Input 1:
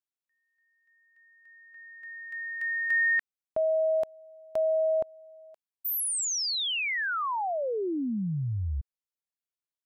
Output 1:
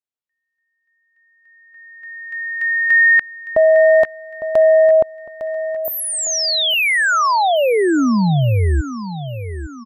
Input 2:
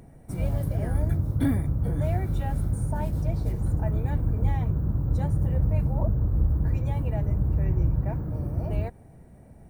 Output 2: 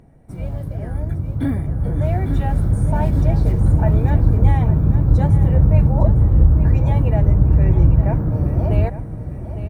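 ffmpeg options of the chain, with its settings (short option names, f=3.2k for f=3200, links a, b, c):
-af "lowpass=f=3.9k:p=1,aecho=1:1:856|1712|2568|3424:0.251|0.105|0.0443|0.0186,dynaudnorm=f=340:g=13:m=15dB"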